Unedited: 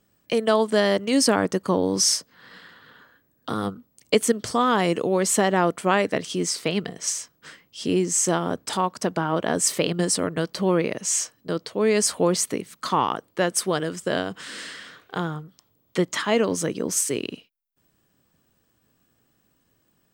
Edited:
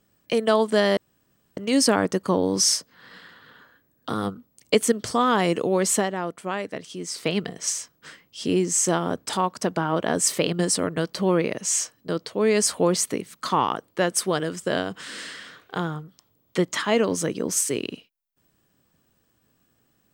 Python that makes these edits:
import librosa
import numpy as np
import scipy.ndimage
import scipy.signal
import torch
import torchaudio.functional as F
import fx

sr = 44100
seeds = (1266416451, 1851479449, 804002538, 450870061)

y = fx.edit(x, sr, fx.insert_room_tone(at_s=0.97, length_s=0.6),
    fx.fade_down_up(start_s=5.33, length_s=1.33, db=-8.5, fade_s=0.19), tone=tone)